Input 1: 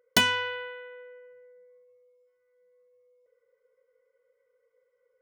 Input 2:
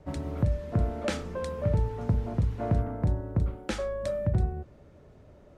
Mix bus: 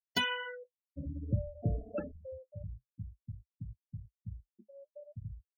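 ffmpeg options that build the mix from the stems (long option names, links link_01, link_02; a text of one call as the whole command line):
ffmpeg -i stem1.wav -i stem2.wav -filter_complex "[0:a]asoftclip=type=tanh:threshold=-10.5dB,volume=-4dB[link_01];[1:a]adelay=900,volume=-2dB,afade=type=out:start_time=2.05:duration=0.49:silence=0.266073[link_02];[link_01][link_02]amix=inputs=2:normalize=0,afftfilt=real='re*gte(hypot(re,im),0.0631)':imag='im*gte(hypot(re,im),0.0631)':win_size=1024:overlap=0.75,flanger=delay=6.4:depth=5.4:regen=-40:speed=0.54:shape=sinusoidal" out.wav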